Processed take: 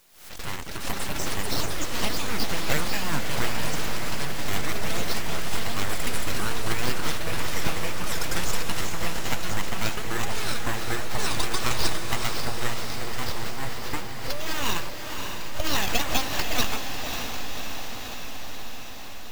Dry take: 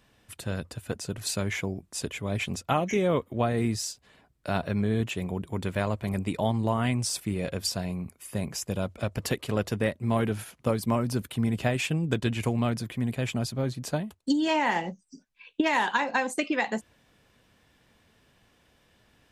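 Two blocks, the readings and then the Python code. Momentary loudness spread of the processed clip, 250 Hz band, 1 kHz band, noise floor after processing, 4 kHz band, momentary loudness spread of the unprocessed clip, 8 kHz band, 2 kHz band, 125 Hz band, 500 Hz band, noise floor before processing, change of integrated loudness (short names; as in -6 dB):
8 LU, -6.0 dB, +0.5 dB, -32 dBFS, +7.5 dB, 9 LU, +5.5 dB, +3.0 dB, -4.5 dB, -4.0 dB, -65 dBFS, -0.5 dB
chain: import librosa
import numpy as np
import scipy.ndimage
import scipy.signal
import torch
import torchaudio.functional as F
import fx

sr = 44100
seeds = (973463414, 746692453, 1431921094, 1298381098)

p1 = fx.spec_quant(x, sr, step_db=15)
p2 = scipy.signal.sosfilt(scipy.signal.butter(4, 190.0, 'highpass', fs=sr, output='sos'), p1)
p3 = fx.peak_eq(p2, sr, hz=2000.0, db=9.0, octaves=1.9)
p4 = fx.hpss(p3, sr, part='harmonic', gain_db=-7)
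p5 = fx.schmitt(p4, sr, flips_db=-36.0)
p6 = p4 + F.gain(torch.from_numpy(p5), -11.0).numpy()
p7 = fx.sample_hold(p6, sr, seeds[0], rate_hz=9600.0, jitter_pct=0)
p8 = np.abs(p7)
p9 = fx.quant_dither(p8, sr, seeds[1], bits=10, dither='triangular')
p10 = p9 + fx.echo_diffused(p9, sr, ms=568, feedback_pct=73, wet_db=-6.0, dry=0)
p11 = fx.echo_pitch(p10, sr, ms=120, semitones=6, count=3, db_per_echo=-3.0)
y = fx.pre_swell(p11, sr, db_per_s=97.0)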